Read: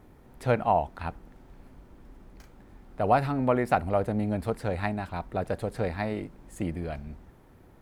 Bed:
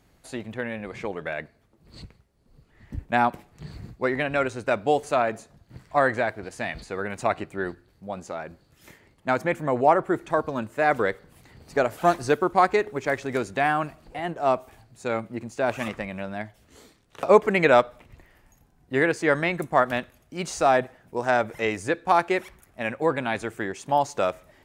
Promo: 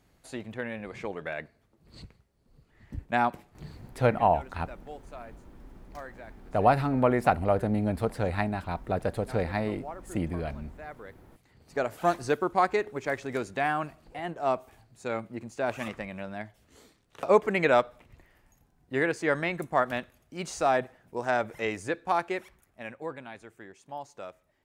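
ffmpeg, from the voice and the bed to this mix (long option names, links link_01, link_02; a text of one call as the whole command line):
ffmpeg -i stem1.wav -i stem2.wav -filter_complex "[0:a]adelay=3550,volume=1dB[link_01];[1:a]volume=13dB,afade=type=out:start_time=3.62:duration=0.48:silence=0.125893,afade=type=in:start_time=11.17:duration=0.8:silence=0.141254,afade=type=out:start_time=21.75:duration=1.6:silence=0.237137[link_02];[link_01][link_02]amix=inputs=2:normalize=0" out.wav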